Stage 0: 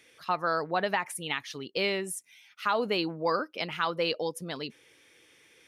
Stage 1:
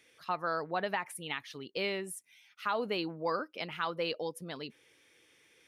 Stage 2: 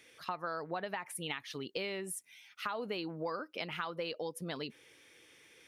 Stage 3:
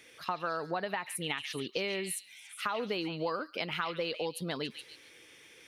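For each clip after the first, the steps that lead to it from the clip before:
dynamic EQ 6400 Hz, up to -5 dB, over -52 dBFS, Q 1.4; gain -5 dB
compressor 6:1, threshold -39 dBFS, peak gain reduction 11 dB; gain +4 dB
delay with a stepping band-pass 0.141 s, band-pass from 2900 Hz, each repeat 0.7 oct, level -5 dB; gain +4 dB

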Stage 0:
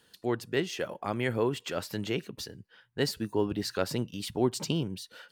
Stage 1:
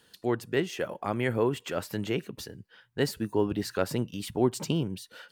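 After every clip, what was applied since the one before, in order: dynamic EQ 4500 Hz, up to -6 dB, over -50 dBFS, Q 1.1; gain +2 dB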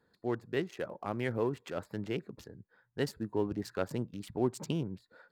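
Wiener smoothing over 15 samples; gain -5.5 dB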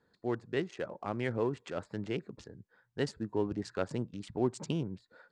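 steep low-pass 8600 Hz 36 dB/oct

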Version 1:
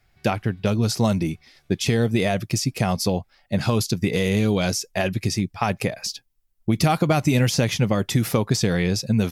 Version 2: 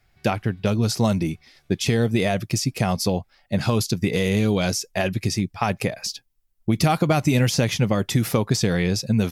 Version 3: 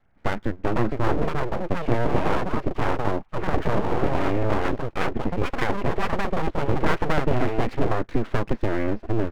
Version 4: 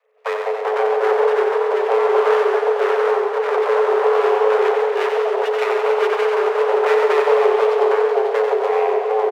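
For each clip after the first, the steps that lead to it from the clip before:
nothing audible
echoes that change speed 0.556 s, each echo +4 st, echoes 2; inverse Chebyshev low-pass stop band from 7000 Hz, stop band 70 dB; full-wave rectifier
frequency shift +430 Hz; feedback echo 91 ms, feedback 53%, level -5.5 dB; warbling echo 0.138 s, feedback 76%, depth 147 cents, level -9 dB

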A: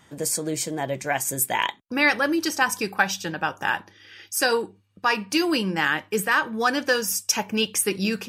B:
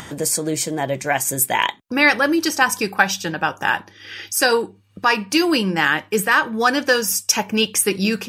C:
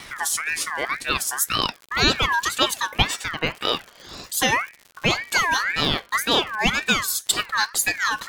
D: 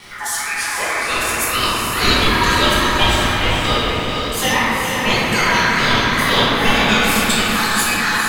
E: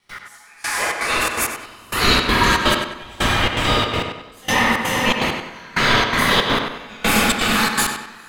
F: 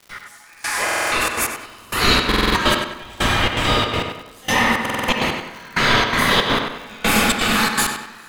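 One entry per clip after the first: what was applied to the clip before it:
upward compressor, threshold -30 dBFS; gain +5 dB
gate with hold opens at -40 dBFS; crackle 140/s -28 dBFS; ring modulator with a swept carrier 1700 Hz, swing 25%, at 1.9 Hz; gain -1 dB
diffused feedback echo 0.463 s, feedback 41%, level -4.5 dB; shoebox room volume 150 m³, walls hard, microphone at 1.3 m; gain -4 dB
step gate ".x.....xxx.xxx" 164 bpm -24 dB; on a send: tape echo 94 ms, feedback 45%, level -5 dB, low-pass 4500 Hz; on the sum: gain -1 dB
crackle 220/s -34 dBFS; stuck buffer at 0.84/2.27/4.81, samples 2048, times 5

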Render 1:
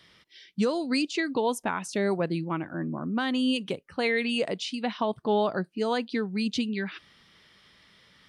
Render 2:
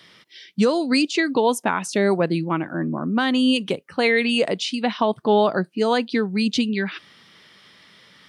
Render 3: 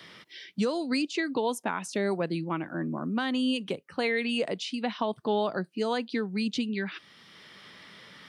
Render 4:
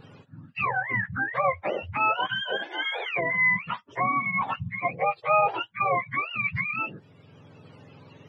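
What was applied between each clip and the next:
HPF 130 Hz; gain +7.5 dB
three-band squash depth 40%; gain -9 dB
spectrum mirrored in octaves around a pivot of 720 Hz; resonant low shelf 400 Hz -10 dB, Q 1.5; gain +5.5 dB

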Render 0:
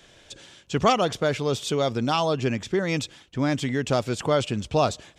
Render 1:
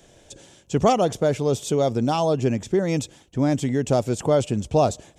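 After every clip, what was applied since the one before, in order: band shelf 2300 Hz -9 dB 2.5 oct; gain +3.5 dB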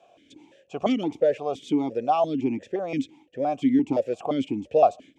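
vowel sequencer 5.8 Hz; gain +8 dB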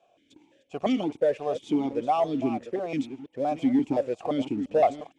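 reverse delay 0.466 s, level -12 dB; sample leveller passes 1; gain -5.5 dB; AC-3 64 kbps 44100 Hz

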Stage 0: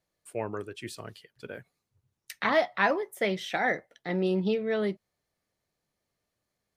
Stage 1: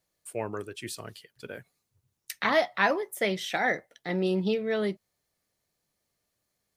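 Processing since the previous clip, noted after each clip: high shelf 4700 Hz +8 dB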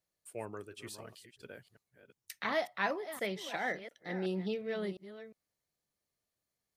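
reverse delay 0.355 s, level -12 dB; gain -9 dB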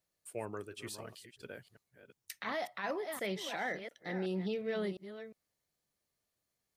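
limiter -30 dBFS, peak gain reduction 11.5 dB; gain +2 dB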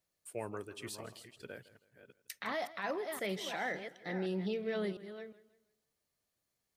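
warbling echo 0.161 s, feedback 35%, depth 75 cents, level -18 dB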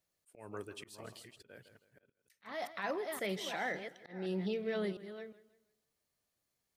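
auto swell 0.247 s

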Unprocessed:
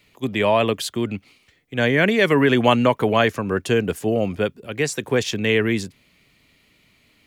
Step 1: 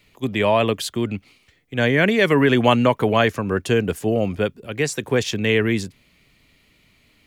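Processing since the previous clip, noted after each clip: low shelf 62 Hz +9 dB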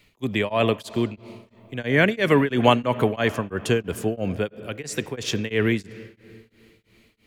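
on a send at -17 dB: reverb RT60 2.8 s, pre-delay 35 ms; on the sum: beating tremolo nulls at 3 Hz

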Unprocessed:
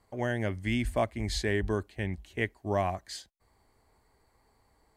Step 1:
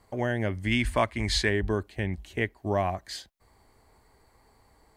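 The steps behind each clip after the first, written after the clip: dynamic EQ 7800 Hz, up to -6 dB, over -56 dBFS, Q 0.88; in parallel at +0.5 dB: compressor, threshold -37 dBFS, peak gain reduction 13.5 dB; on the sum: spectral gain 0.71–1.49, 870–11000 Hz +7 dB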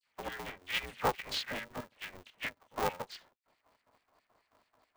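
LFO band-pass square 4.6 Hz 820–2800 Hz; dispersion lows, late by 74 ms, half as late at 1800 Hz; polarity switched at an audio rate 180 Hz; gain -1 dB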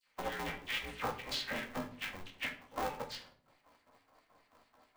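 compressor 6:1, threshold -39 dBFS, peak gain reduction 13.5 dB; flange 0.48 Hz, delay 9 ms, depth 8.9 ms, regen -34%; on a send at -5.5 dB: reverb RT60 0.60 s, pre-delay 4 ms; on the sum: gain +7 dB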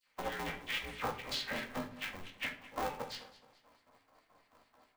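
feedback echo 0.214 s, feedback 41%, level -18 dB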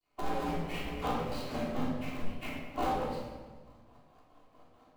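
median filter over 25 samples; shoebox room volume 700 m³, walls mixed, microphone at 3.3 m

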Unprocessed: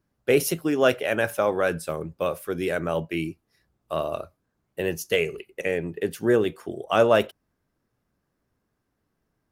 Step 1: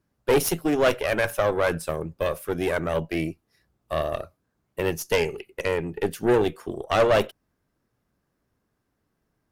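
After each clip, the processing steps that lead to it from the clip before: tube stage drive 19 dB, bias 0.75; gain +5.5 dB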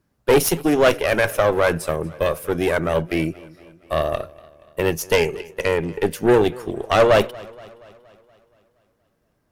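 warbling echo 0.236 s, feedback 57%, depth 63 cents, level -22 dB; gain +5 dB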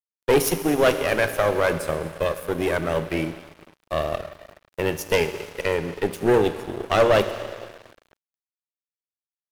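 Schroeder reverb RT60 2.7 s, combs from 31 ms, DRR 8.5 dB; crackle 290/s -41 dBFS; crossover distortion -34.5 dBFS; gain -2.5 dB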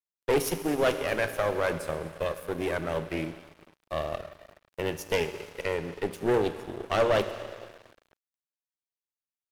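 Doppler distortion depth 0.16 ms; gain -6.5 dB

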